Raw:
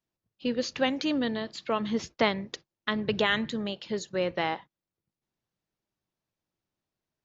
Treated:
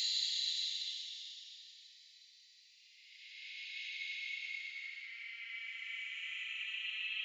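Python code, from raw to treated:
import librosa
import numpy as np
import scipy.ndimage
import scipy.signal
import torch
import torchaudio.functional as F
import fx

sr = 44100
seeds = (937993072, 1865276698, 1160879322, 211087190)

y = fx.paulstretch(x, sr, seeds[0], factor=45.0, window_s=0.05, from_s=1.58)
y = scipy.signal.sosfilt(scipy.signal.cheby1(6, 1.0, 2000.0, 'highpass', fs=sr, output='sos'), y)
y = y * 10.0 ** (2.5 / 20.0)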